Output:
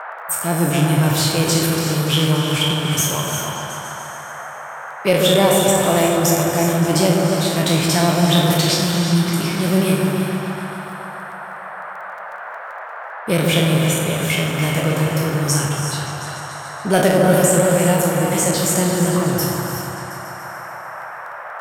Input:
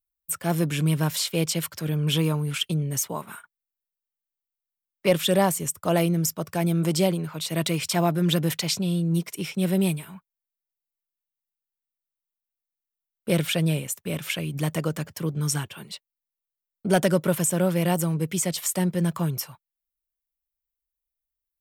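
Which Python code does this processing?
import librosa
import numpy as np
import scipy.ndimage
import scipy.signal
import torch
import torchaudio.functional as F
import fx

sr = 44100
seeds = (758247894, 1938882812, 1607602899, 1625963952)

y = fx.spec_trails(x, sr, decay_s=0.75)
y = fx.dmg_crackle(y, sr, seeds[0], per_s=10.0, level_db=-36.0)
y = fx.echo_opening(y, sr, ms=144, hz=750, octaves=1, feedback_pct=70, wet_db=-3)
y = fx.rev_gated(y, sr, seeds[1], gate_ms=400, shape='rising', drr_db=5.5)
y = fx.dmg_noise_band(y, sr, seeds[2], low_hz=560.0, high_hz=1700.0, level_db=-35.0)
y = F.gain(torch.from_numpy(y), 3.0).numpy()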